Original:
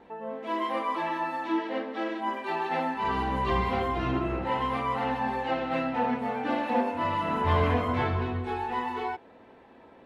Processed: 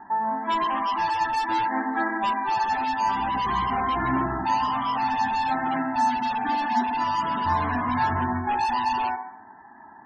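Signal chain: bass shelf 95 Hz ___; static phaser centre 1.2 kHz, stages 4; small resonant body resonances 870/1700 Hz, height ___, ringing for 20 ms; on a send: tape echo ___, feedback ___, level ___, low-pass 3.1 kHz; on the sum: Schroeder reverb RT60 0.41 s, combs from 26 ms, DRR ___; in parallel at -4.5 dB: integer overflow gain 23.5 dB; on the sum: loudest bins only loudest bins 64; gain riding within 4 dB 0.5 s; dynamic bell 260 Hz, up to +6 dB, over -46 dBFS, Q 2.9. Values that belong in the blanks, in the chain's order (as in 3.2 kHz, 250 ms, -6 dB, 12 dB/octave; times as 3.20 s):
-10 dB, 11 dB, 139 ms, 31%, -12 dB, 13 dB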